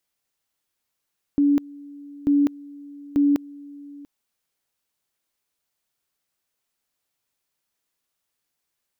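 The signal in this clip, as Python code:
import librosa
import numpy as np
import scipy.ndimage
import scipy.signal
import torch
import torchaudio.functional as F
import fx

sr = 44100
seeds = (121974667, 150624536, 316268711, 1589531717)

y = fx.two_level_tone(sr, hz=286.0, level_db=-14.5, drop_db=23.0, high_s=0.2, low_s=0.69, rounds=3)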